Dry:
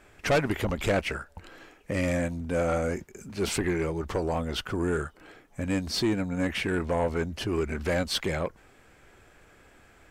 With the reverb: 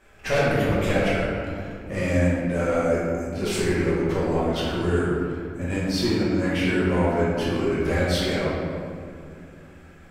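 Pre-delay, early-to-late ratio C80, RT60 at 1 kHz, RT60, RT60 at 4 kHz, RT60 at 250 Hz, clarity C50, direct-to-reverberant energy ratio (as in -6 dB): 5 ms, 0.0 dB, 2.1 s, 2.3 s, 1.3 s, 3.5 s, -2.0 dB, -8.5 dB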